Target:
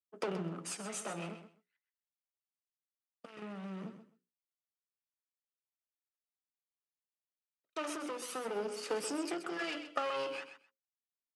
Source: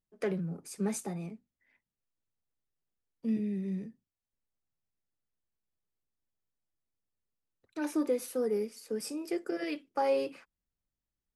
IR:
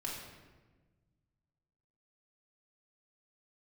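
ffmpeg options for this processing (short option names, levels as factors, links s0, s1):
-filter_complex "[0:a]aeval=exprs='if(lt(val(0),0),0.447*val(0),val(0))':c=same,bandreject=f=60:t=h:w=6,bandreject=f=120:t=h:w=6,bandreject=f=180:t=h:w=6,bandreject=f=240:t=h:w=6,bandreject=f=300:t=h:w=6,bandreject=f=360:t=h:w=6,bandreject=f=420:t=h:w=6,bandreject=f=480:t=h:w=6,bandreject=f=540:t=h:w=6,agate=range=0.0224:threshold=0.00126:ratio=3:detection=peak,asettb=1/sr,asplit=3[s0][s1][s2];[s0]atrim=end=1.344[s3];[s1]atrim=start=1.34:end=3.42,asetpts=PTS-STARTPTS,afade=t=in:d=0.004:c=qsin,afade=t=out:st=2.076:d=0.004:c=qsin,equalizer=f=270:t=o:w=2.2:g=-9.5[s4];[s2]atrim=start=3.416[s5];[s3][s4]acrossfade=d=0.004:c1=hsin:c2=qsin[s6];[s6][s5]acrossfade=d=0.004:c1=qsin:c2=hsin,acompressor=threshold=0.0112:ratio=6,aphaser=in_gain=1:out_gain=1:delay=1.6:decay=0.51:speed=0.45:type=sinusoidal,aeval=exprs='clip(val(0),-1,0.00631)':c=same,highpass=f=180:w=0.5412,highpass=f=180:w=1.3066,equalizer=f=230:t=q:w=4:g=-7,equalizer=f=1300:t=q:w=4:g=9,equalizer=f=2900:t=q:w=4:g=8,lowpass=f=9500:w=0.5412,lowpass=f=9500:w=1.3066,aecho=1:1:129|258:0.299|0.0508,volume=2.99"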